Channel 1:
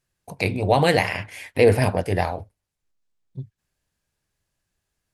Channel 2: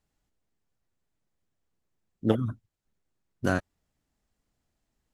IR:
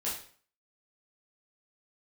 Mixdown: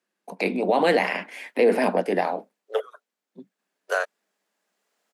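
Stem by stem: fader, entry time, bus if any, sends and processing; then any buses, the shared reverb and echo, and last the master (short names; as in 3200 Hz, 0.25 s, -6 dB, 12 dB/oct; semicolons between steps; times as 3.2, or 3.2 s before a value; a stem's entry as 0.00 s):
+2.5 dB, 0.00 s, no send, steep high-pass 190 Hz 72 dB/oct; high shelf 4000 Hz -11 dB
-4.0 dB, 0.45 s, no send, AGC gain up to 15 dB; rippled Chebyshev high-pass 420 Hz, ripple 3 dB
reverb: off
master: limiter -10 dBFS, peak gain reduction 7.5 dB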